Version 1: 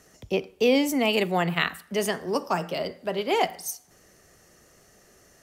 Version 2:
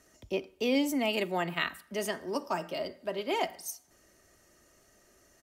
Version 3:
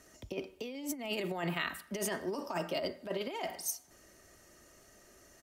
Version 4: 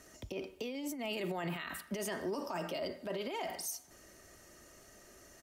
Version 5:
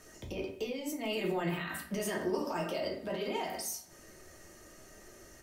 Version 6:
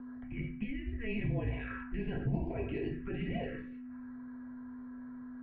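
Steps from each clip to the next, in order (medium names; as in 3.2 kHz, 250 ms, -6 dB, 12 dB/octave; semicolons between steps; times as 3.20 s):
comb 3.2 ms, depth 40%; trim -7 dB
peak limiter -23.5 dBFS, peak gain reduction 10 dB; compressor with a negative ratio -35 dBFS, ratio -0.5
peak limiter -31.5 dBFS, peak gain reduction 11 dB; trim +2 dB
simulated room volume 33 m³, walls mixed, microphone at 0.55 m
touch-sensitive phaser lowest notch 440 Hz, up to 1.6 kHz, full sweep at -30.5 dBFS; whistle 480 Hz -44 dBFS; mistuned SSB -230 Hz 170–2700 Hz; trim +1 dB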